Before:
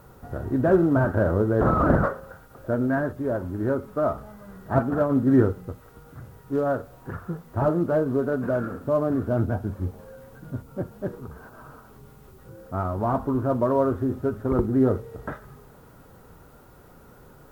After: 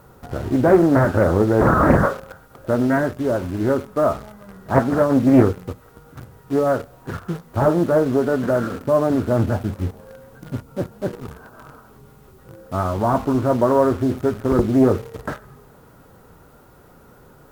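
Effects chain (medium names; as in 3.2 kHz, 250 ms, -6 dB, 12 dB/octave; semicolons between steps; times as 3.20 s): bass shelf 79 Hz -4 dB; in parallel at -6.5 dB: word length cut 6-bit, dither none; on the sum: loudspeaker Doppler distortion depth 0.46 ms; trim +2.5 dB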